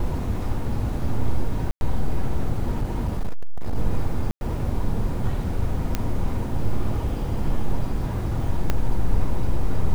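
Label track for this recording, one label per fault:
1.710000	1.810000	dropout 101 ms
2.780000	3.760000	clipped -18 dBFS
4.310000	4.410000	dropout 101 ms
5.950000	5.950000	pop -9 dBFS
8.700000	8.700000	pop -8 dBFS

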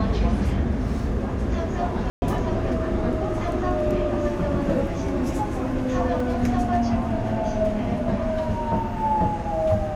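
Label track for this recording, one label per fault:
2.100000	2.220000	dropout 120 ms
6.200000	6.200000	dropout 3.2 ms

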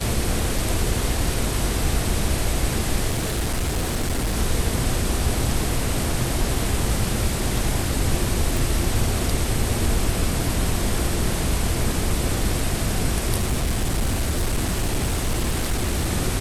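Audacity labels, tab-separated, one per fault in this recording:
3.100000	4.360000	clipped -19 dBFS
8.570000	8.570000	pop
13.390000	16.080000	clipped -17.5 dBFS

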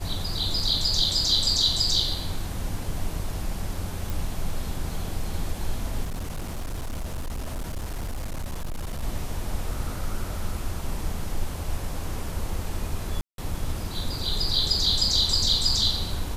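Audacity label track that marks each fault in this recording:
4.100000	4.100000	pop
6.030000	9.020000	clipped -27 dBFS
13.210000	13.380000	dropout 172 ms

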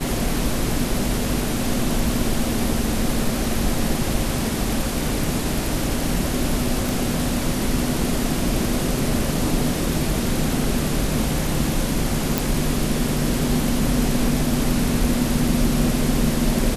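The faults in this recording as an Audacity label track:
6.890000	6.890000	pop
12.380000	12.380000	pop

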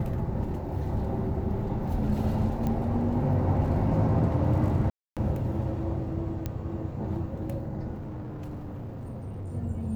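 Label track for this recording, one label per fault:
2.670000	2.670000	pop -19 dBFS
4.900000	5.170000	dropout 267 ms
6.460000	6.460000	pop -18 dBFS
7.940000	9.530000	clipped -34 dBFS

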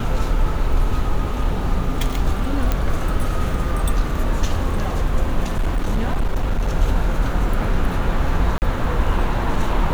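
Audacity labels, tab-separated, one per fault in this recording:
2.720000	2.720000	pop -7 dBFS
5.520000	6.690000	clipped -14.5 dBFS
8.580000	8.620000	dropout 39 ms

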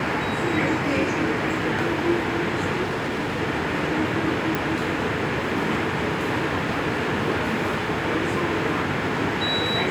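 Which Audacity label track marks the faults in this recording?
2.830000	3.410000	clipped -22.5 dBFS
4.550000	4.550000	pop

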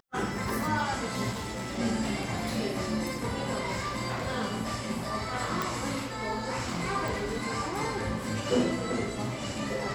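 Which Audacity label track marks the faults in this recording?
1.310000	1.790000	clipped -32 dBFS
5.620000	5.620000	pop
7.080000	7.080000	pop

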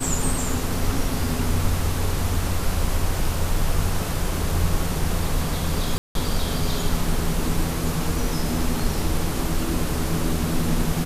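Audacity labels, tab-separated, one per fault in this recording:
5.980000	6.150000	dropout 172 ms

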